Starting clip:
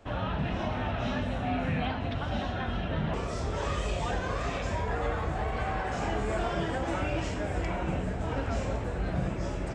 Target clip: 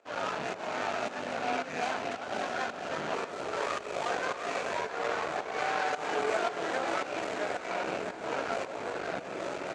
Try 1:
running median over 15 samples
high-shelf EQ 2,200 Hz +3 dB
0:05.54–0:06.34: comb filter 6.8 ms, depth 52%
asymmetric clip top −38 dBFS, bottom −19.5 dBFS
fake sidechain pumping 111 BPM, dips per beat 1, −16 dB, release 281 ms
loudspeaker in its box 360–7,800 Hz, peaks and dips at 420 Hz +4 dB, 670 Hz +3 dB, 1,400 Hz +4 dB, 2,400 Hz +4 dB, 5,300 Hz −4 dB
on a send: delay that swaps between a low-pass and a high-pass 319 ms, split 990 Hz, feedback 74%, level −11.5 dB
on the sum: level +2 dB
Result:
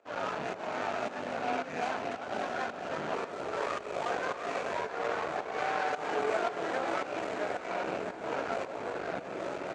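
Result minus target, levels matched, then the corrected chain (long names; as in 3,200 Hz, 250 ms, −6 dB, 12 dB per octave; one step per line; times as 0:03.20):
4,000 Hz band −3.0 dB
running median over 15 samples
high-shelf EQ 2,200 Hz +9.5 dB
0:05.54–0:06.34: comb filter 6.8 ms, depth 52%
asymmetric clip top −38 dBFS, bottom −19.5 dBFS
fake sidechain pumping 111 BPM, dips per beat 1, −16 dB, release 281 ms
loudspeaker in its box 360–7,800 Hz, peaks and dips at 420 Hz +4 dB, 670 Hz +3 dB, 1,400 Hz +4 dB, 2,400 Hz +4 dB, 5,300 Hz −4 dB
on a send: delay that swaps between a low-pass and a high-pass 319 ms, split 990 Hz, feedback 74%, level −11.5 dB
on the sum: level +2 dB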